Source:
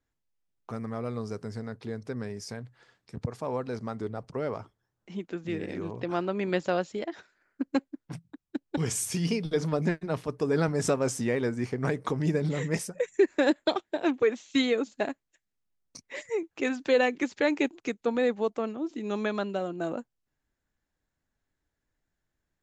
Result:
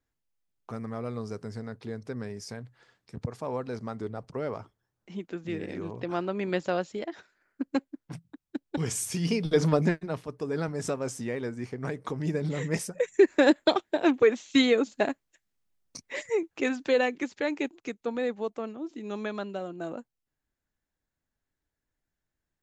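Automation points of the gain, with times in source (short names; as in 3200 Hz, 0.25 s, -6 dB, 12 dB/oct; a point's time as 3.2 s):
9.18 s -1 dB
9.67 s +6 dB
10.26 s -5 dB
11.96 s -5 dB
13.29 s +3.5 dB
16.27 s +3.5 dB
17.41 s -4 dB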